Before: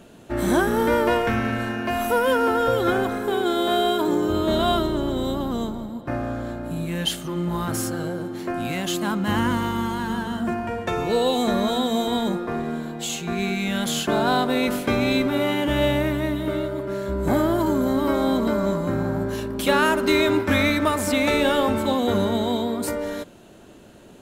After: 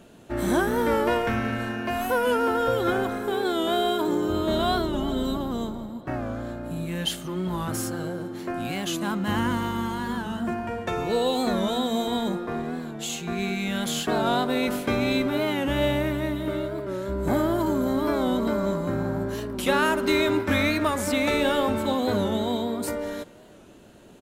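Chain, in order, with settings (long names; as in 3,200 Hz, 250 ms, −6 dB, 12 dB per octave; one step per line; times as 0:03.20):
0:04.93–0:05.37: comb filter 4.5 ms, depth 75%
far-end echo of a speakerphone 390 ms, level −23 dB
wow of a warped record 45 rpm, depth 100 cents
level −3 dB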